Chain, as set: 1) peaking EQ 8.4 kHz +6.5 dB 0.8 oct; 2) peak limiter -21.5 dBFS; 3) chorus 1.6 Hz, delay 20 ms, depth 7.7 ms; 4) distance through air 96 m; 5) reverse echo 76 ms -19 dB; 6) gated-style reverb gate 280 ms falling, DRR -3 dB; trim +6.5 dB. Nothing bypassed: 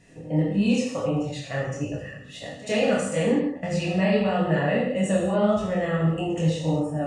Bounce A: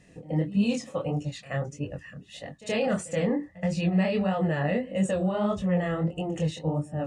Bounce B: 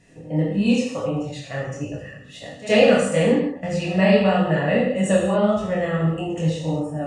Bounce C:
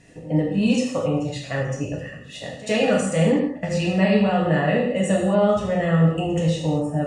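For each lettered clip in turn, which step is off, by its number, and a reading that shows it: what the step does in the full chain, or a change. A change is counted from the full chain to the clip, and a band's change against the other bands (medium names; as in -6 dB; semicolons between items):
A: 6, momentary loudness spread change +2 LU; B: 2, mean gain reduction 1.5 dB; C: 3, loudness change +3.0 LU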